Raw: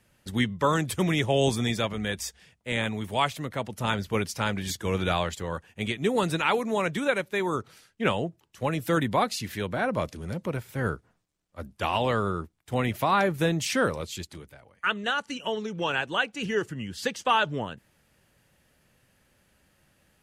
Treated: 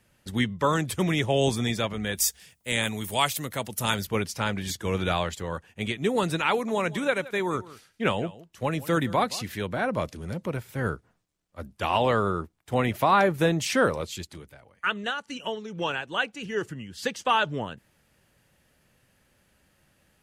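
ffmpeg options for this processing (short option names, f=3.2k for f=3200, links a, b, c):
-filter_complex "[0:a]asettb=1/sr,asplit=3[a][b][c];[a]atrim=end=2.154[d];[b]atrim=start=2.15:end=4.07,asetpts=PTS-STARTPTS,afade=t=in:d=0.004:c=qsin,afade=t=out:st=1.916:d=0.004:c=qsin,aemphasis=mode=production:type=75fm[e];[c]atrim=start=4.066[f];[d][e]acrossfade=d=0.004:c1=hsin:c2=qsin[g];[g][f]acrossfade=d=0.004:c1=qsin:c2=hsin,asettb=1/sr,asplit=3[h][i][j];[h]atrim=end=6.514[k];[i]atrim=start=6.51:end=9.45,asetpts=PTS-STARTPTS,afade=t=in:d=0.004:c=qsin,afade=t=out:st=2.936:d=0.004:c=qsin,aecho=1:1:170:0.119,atrim=end_sample=129654[l];[j]atrim=start=9.446[m];[k][l]acrossfade=d=0.004:c1=hsin:c2=qsin[n];[n][m]acrossfade=d=0.004:c1=qsin:c2=hsin,asettb=1/sr,asplit=3[o][p][q];[o]atrim=end=11.904[r];[p]atrim=start=11.9:end=14.15,asetpts=PTS-STARTPTS,afade=t=in:d=0.004:c=qsin,afade=t=out:st=2.246:d=0.004:c=qsin,equalizer=f=710:w=0.47:g=3.5[s];[q]atrim=start=14.146[t];[r][s]acrossfade=d=0.004:c1=hsin:c2=qsin[u];[u][t]acrossfade=d=0.004:c1=qsin:c2=hsin,asplit=3[v][w][x];[v]afade=t=out:st=14.89:d=0.02[y];[w]tremolo=f=2.4:d=0.48,afade=t=in:st=14.89:d=0.02,afade=t=out:st=17.15:d=0.02[z];[x]afade=t=in:st=17.15:d=0.02[aa];[y][z][aa]amix=inputs=3:normalize=0"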